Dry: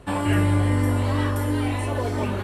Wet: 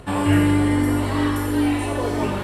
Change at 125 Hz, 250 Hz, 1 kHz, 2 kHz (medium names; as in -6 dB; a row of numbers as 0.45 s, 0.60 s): -1.5 dB, +6.0 dB, +2.5 dB, +3.0 dB